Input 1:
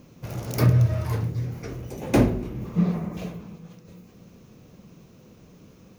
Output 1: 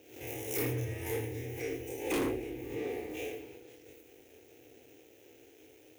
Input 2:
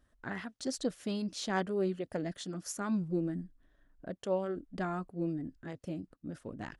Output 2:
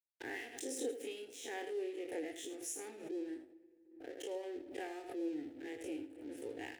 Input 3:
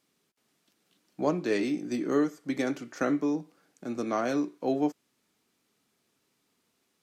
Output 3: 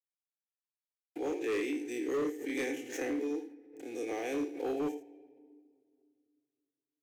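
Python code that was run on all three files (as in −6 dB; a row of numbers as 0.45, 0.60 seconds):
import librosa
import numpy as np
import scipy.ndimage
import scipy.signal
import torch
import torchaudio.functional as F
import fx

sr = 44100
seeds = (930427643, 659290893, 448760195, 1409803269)

y = fx.spec_dilate(x, sr, span_ms=60)
y = fx.rider(y, sr, range_db=3, speed_s=0.5)
y = fx.dynamic_eq(y, sr, hz=380.0, q=6.0, threshold_db=-43.0, ratio=4.0, max_db=-4)
y = fx.fixed_phaser(y, sr, hz=920.0, stages=8)
y = np.sign(y) * np.maximum(np.abs(y) - 10.0 ** (-53.0 / 20.0), 0.0)
y = scipy.signal.sosfilt(scipy.signal.butter(2, 85.0, 'highpass', fs=sr, output='sos'), y)
y = fx.low_shelf(y, sr, hz=170.0, db=-11.0)
y = fx.fixed_phaser(y, sr, hz=440.0, stages=4)
y = y + 10.0 ** (-10.5 / 20.0) * np.pad(y, (int(80 * sr / 1000.0), 0))[:len(y)]
y = fx.room_shoebox(y, sr, seeds[0], volume_m3=4000.0, walls='mixed', distance_m=0.35)
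y = np.clip(10.0 ** (28.5 / 20.0) * y, -1.0, 1.0) / 10.0 ** (28.5 / 20.0)
y = fx.pre_swell(y, sr, db_per_s=87.0)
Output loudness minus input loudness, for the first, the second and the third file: −11.5, −7.0, −6.0 LU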